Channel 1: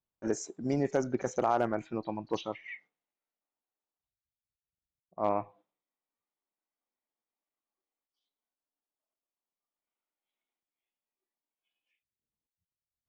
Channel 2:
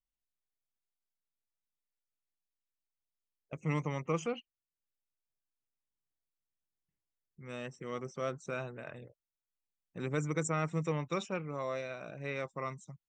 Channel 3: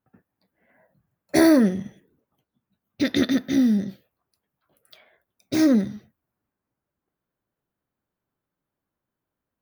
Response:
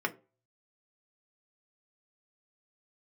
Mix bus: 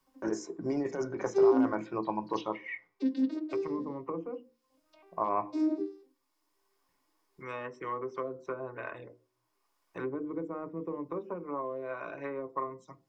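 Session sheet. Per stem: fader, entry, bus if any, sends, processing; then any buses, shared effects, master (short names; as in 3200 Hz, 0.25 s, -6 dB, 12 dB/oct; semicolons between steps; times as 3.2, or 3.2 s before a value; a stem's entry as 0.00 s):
-7.5 dB, 0.00 s, no bus, send -3 dB, negative-ratio compressor -30 dBFS, ratio -0.5
0.0 dB, 0.00 s, bus A, send -8 dB, treble ducked by the level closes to 410 Hz, closed at -32.5 dBFS; bell 160 Hz -12.5 dB 0.42 oct
-12.5 dB, 0.00 s, bus A, send -4 dB, arpeggiated vocoder minor triad, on C4, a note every 0.251 s; bell 1700 Hz -12.5 dB 0.72 oct
bus A: 0.0 dB, bell 260 Hz -13.5 dB 2.1 oct; compressor, threshold -45 dBFS, peak gain reduction 10 dB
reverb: on, RT60 0.35 s, pre-delay 3 ms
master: thirty-one-band EQ 315 Hz +4 dB, 1000 Hz +10 dB, 5000 Hz +5 dB; three-band squash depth 40%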